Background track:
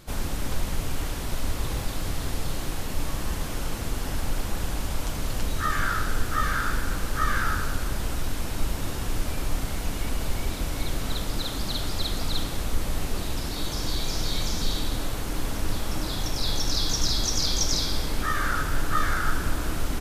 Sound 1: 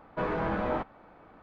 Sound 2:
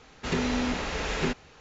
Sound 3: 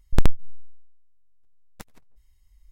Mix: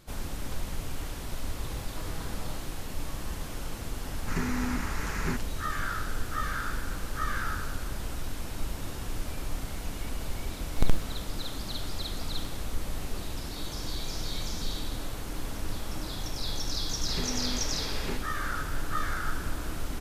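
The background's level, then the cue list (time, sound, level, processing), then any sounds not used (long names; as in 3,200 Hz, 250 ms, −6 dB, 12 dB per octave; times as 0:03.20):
background track −6.5 dB
0:01.78: mix in 1 −13 dB + parametric band 540 Hz −5.5 dB 1.4 octaves
0:04.04: mix in 2 −1 dB + phaser with its sweep stopped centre 1,400 Hz, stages 4
0:10.64: mix in 3 −7 dB + hold until the input has moved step −24 dBFS
0:16.85: mix in 2 −8.5 dB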